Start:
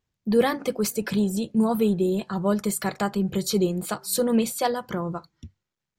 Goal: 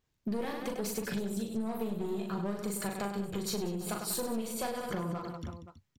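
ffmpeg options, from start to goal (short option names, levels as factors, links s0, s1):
-af "aeval=exprs='clip(val(0),-1,0.0531)':c=same,aecho=1:1:40|100|190|325|527.5:0.631|0.398|0.251|0.158|0.1,acompressor=threshold=0.0251:ratio=6"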